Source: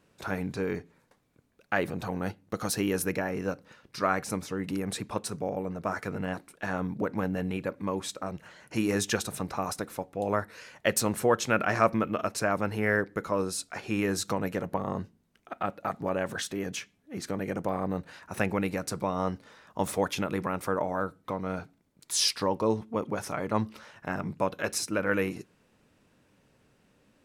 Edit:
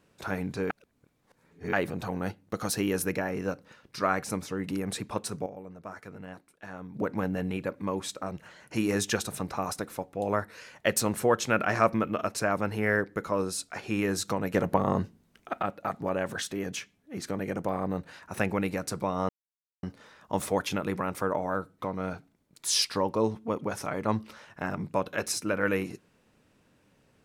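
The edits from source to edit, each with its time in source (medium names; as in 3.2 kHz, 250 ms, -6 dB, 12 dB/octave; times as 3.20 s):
0.70–1.73 s: reverse
5.46–6.94 s: gain -10.5 dB
14.54–15.62 s: gain +6 dB
19.29 s: insert silence 0.54 s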